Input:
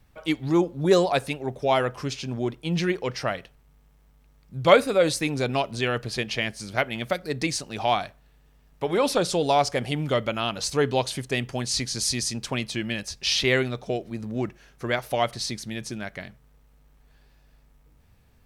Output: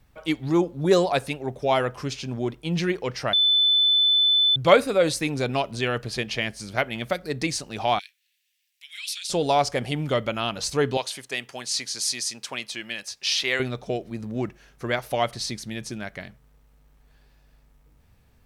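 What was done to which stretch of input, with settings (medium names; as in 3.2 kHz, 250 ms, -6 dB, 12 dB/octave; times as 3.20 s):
3.33–4.56 s: bleep 3.51 kHz -16 dBFS
7.99–9.30 s: steep high-pass 2.2 kHz
10.97–13.60 s: high-pass 930 Hz 6 dB/octave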